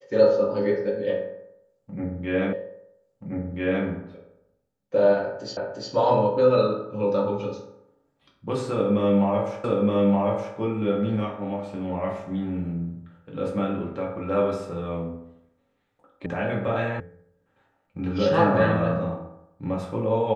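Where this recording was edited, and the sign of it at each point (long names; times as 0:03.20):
0:02.53: the same again, the last 1.33 s
0:05.57: the same again, the last 0.35 s
0:09.64: the same again, the last 0.92 s
0:16.26: cut off before it has died away
0:17.00: cut off before it has died away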